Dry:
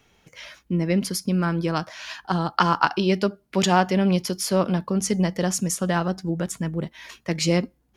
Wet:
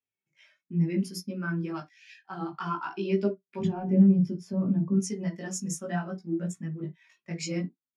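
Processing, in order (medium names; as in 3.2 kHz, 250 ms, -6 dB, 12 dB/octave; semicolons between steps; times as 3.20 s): waveshaping leveller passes 1; 1.80–2.23 s: steep high-pass 1.7 kHz 48 dB/octave; 3.59–4.94 s: tilt EQ -4 dB/octave; peak limiter -9.5 dBFS, peak gain reduction 10 dB; chorus voices 2, 0.62 Hz, delay 18 ms, depth 3.4 ms; reverberation, pre-delay 3 ms, DRR 6 dB; spectral contrast expander 1.5:1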